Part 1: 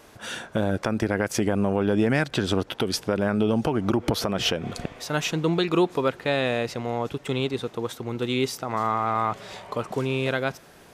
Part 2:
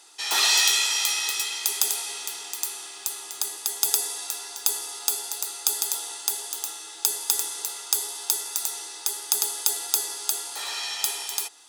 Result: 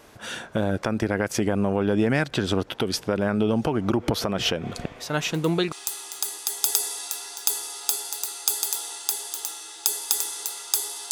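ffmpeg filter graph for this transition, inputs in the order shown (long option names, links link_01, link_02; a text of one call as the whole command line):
ffmpeg -i cue0.wav -i cue1.wav -filter_complex "[1:a]asplit=2[link_01][link_02];[0:a]apad=whole_dur=11.11,atrim=end=11.11,atrim=end=5.722[link_03];[link_02]atrim=start=2.908:end=8.3[link_04];[link_01]atrim=start=2.45:end=2.91,asetpts=PTS-STARTPTS,volume=-17.5dB,afade=type=in:duration=0.004:curve=hsin,afade=type=out:start_time=0.456:duration=0.004:curve=hsin,adelay=5260[link_05];[link_03][link_04]acrossfade=duration=0.004:curve1=hsin:curve2=hsin[link_06];[link_06][link_05]amix=inputs=2:normalize=0" out.wav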